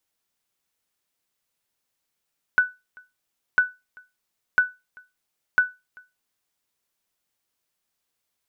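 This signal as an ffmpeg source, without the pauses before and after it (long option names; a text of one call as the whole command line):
ffmpeg -f lavfi -i "aevalsrc='0.335*(sin(2*PI*1490*mod(t,1))*exp(-6.91*mod(t,1)/0.23)+0.0376*sin(2*PI*1490*max(mod(t,1)-0.39,0))*exp(-6.91*max(mod(t,1)-0.39,0)/0.23))':duration=4:sample_rate=44100" out.wav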